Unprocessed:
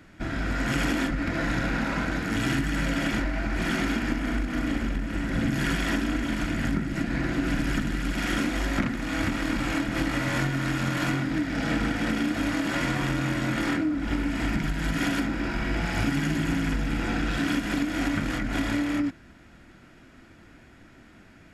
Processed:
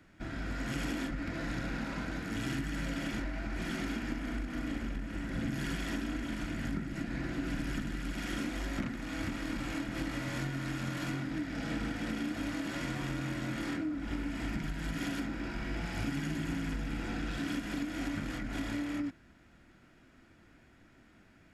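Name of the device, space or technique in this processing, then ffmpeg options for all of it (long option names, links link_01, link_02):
one-band saturation: -filter_complex "[0:a]acrossover=split=550|2700[link_01][link_02][link_03];[link_02]asoftclip=type=tanh:threshold=-31dB[link_04];[link_01][link_04][link_03]amix=inputs=3:normalize=0,volume=-9dB"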